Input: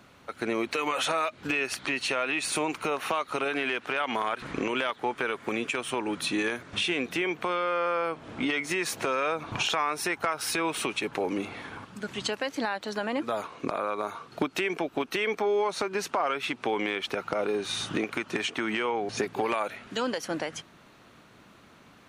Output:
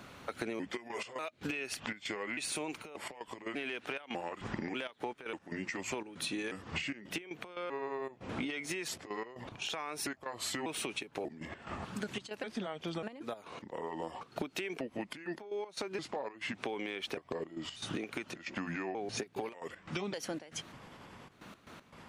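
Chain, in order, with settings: trilling pitch shifter -4 st, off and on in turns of 0.592 s; dynamic EQ 1200 Hz, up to -6 dB, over -44 dBFS, Q 1.4; compressor 12:1, threshold -38 dBFS, peak gain reduction 15.5 dB; step gate "xxxxxx.x.x.xxxx." 117 bpm -12 dB; gain +3.5 dB

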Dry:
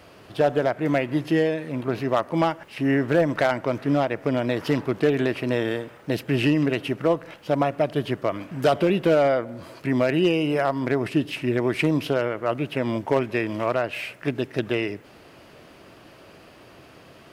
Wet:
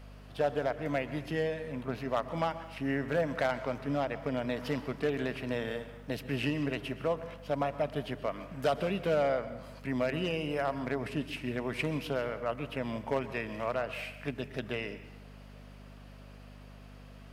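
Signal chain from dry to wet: HPF 120 Hz; bell 340 Hz -12 dB 0.27 oct; hum 50 Hz, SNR 15 dB; on a send: reverb RT60 0.85 s, pre-delay 0.114 s, DRR 12.5 dB; on the sum: gain -8.5 dB

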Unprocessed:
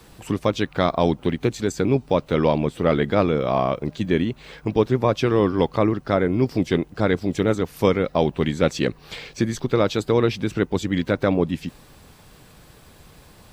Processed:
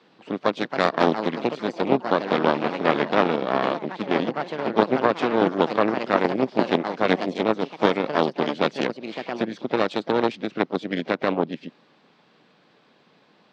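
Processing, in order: echoes that change speed 0.368 s, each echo +4 st, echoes 3, each echo -6 dB; harmoniser +4 st -16 dB, +7 st -14 dB; LPF 4400 Hz 24 dB/oct; added harmonics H 3 -16 dB, 4 -8 dB, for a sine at 1.5 dBFS; HPF 190 Hz 24 dB/oct; gain -1 dB

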